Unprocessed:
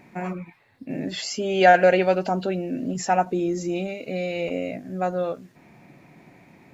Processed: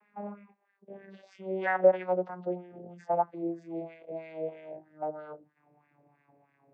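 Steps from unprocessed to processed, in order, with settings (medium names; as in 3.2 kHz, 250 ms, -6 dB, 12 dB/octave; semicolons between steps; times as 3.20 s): vocoder on a note that slides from G#3, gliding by -7 st; LFO band-pass sine 3.1 Hz 540–1800 Hz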